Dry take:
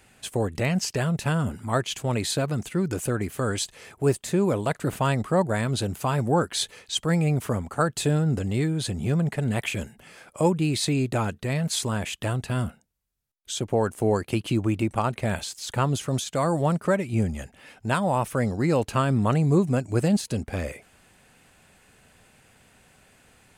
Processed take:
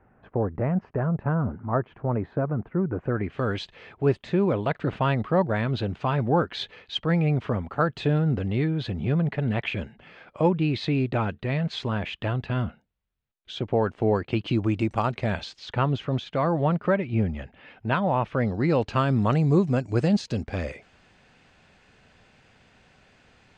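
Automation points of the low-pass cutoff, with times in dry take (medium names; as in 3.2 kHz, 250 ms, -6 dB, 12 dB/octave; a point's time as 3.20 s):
low-pass 24 dB/octave
2.96 s 1.4 kHz
3.40 s 3.6 kHz
14.23 s 3.6 kHz
14.88 s 6.2 kHz
15.91 s 3.4 kHz
18.25 s 3.4 kHz
19.17 s 5.6 kHz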